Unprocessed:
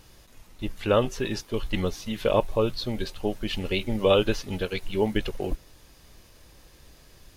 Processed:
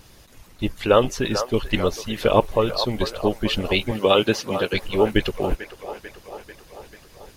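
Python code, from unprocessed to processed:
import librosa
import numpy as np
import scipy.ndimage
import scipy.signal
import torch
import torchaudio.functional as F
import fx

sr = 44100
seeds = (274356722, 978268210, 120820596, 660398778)

y = fx.echo_wet_bandpass(x, sr, ms=442, feedback_pct=63, hz=1000.0, wet_db=-8)
y = fx.hpss(y, sr, part='harmonic', gain_db=-10)
y = fx.highpass(y, sr, hz=130.0, slope=12, at=(3.91, 4.73))
y = y * librosa.db_to_amplitude(8.0)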